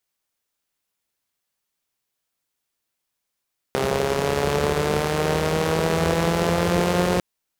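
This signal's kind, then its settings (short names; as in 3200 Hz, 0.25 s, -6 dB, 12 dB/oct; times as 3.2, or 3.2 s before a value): four-cylinder engine model, changing speed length 3.45 s, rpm 4000, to 5400, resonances 83/180/410 Hz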